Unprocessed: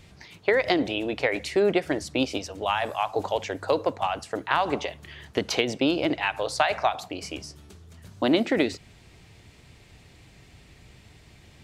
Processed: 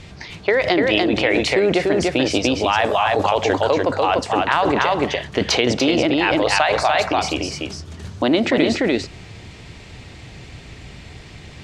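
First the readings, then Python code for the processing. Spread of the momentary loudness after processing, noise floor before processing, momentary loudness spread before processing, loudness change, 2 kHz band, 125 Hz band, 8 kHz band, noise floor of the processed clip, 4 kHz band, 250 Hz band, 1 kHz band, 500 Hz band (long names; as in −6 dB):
8 LU, −53 dBFS, 11 LU, +8.0 dB, +8.5 dB, +10.5 dB, +9.5 dB, −40 dBFS, +9.0 dB, +8.0 dB, +8.5 dB, +8.0 dB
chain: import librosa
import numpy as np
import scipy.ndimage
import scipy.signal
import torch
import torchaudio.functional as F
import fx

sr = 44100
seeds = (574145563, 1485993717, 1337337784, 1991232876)

p1 = x + 10.0 ** (-4.0 / 20.0) * np.pad(x, (int(294 * sr / 1000.0), 0))[:len(x)]
p2 = fx.over_compress(p1, sr, threshold_db=-28.0, ratio=-0.5)
p3 = p1 + (p2 * 10.0 ** (0.0 / 20.0))
p4 = scipy.signal.sosfilt(scipy.signal.butter(2, 7000.0, 'lowpass', fs=sr, output='sos'), p3)
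y = p4 * 10.0 ** (3.5 / 20.0)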